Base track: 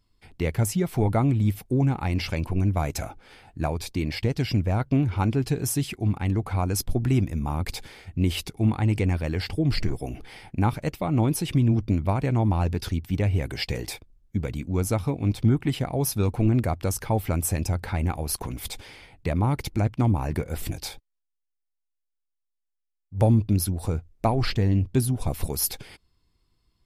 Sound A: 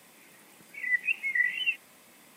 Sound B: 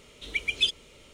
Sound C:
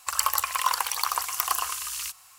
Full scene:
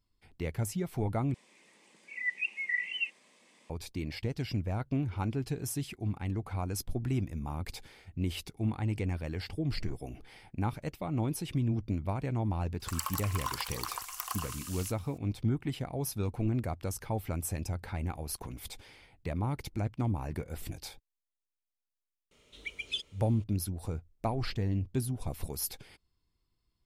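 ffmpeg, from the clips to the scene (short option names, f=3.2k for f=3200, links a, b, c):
-filter_complex "[0:a]volume=-9.5dB[a];[1:a]highpass=210,equalizer=f=290:t=q:w=4:g=-4,equalizer=f=720:t=q:w=4:g=-5,equalizer=f=1.4k:t=q:w=4:g=-9,lowpass=f=8.1k:w=0.5412,lowpass=f=8.1k:w=1.3066[b];[a]asplit=2[c][d];[c]atrim=end=1.344[e];[b]atrim=end=2.36,asetpts=PTS-STARTPTS,volume=-4.5dB[f];[d]atrim=start=3.696[g];[3:a]atrim=end=2.38,asetpts=PTS-STARTPTS,volume=-11.5dB,afade=t=in:d=0.004:c=hsin,afade=t=out:st=2.376:d=0.004:c=hsin,adelay=12800[h];[2:a]atrim=end=1.13,asetpts=PTS-STARTPTS,volume=-11dB,afade=t=in:d=0.004:c=hsin,afade=t=out:st=1.126:d=0.004:c=hsin,adelay=22310[i];[e][f]acrossfade=d=0.004:c1=hsin:c2=hsin[j];[j][g]acrossfade=d=0.004:c1=hsin:c2=hsin[k];[k][h][i]amix=inputs=3:normalize=0"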